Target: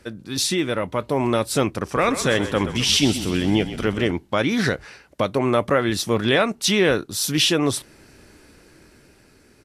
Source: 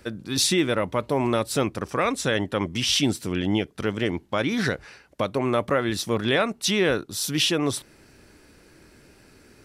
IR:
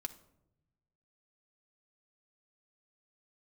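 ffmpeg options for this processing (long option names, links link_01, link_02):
-filter_complex "[0:a]dynaudnorm=framelen=250:gausssize=9:maxgain=5dB,asplit=3[link_01][link_02][link_03];[link_01]afade=type=out:start_time=1.94:duration=0.02[link_04];[link_02]asplit=8[link_05][link_06][link_07][link_08][link_09][link_10][link_11][link_12];[link_06]adelay=128,afreqshift=-34,volume=-11.5dB[link_13];[link_07]adelay=256,afreqshift=-68,volume=-16.2dB[link_14];[link_08]adelay=384,afreqshift=-102,volume=-21dB[link_15];[link_09]adelay=512,afreqshift=-136,volume=-25.7dB[link_16];[link_10]adelay=640,afreqshift=-170,volume=-30.4dB[link_17];[link_11]adelay=768,afreqshift=-204,volume=-35.2dB[link_18];[link_12]adelay=896,afreqshift=-238,volume=-39.9dB[link_19];[link_05][link_13][link_14][link_15][link_16][link_17][link_18][link_19]amix=inputs=8:normalize=0,afade=type=in:start_time=1.94:duration=0.02,afade=type=out:start_time=4.11:duration=0.02[link_20];[link_03]afade=type=in:start_time=4.11:duration=0.02[link_21];[link_04][link_20][link_21]amix=inputs=3:normalize=0,volume=-1dB" -ar 32000 -c:a libvorbis -b:a 64k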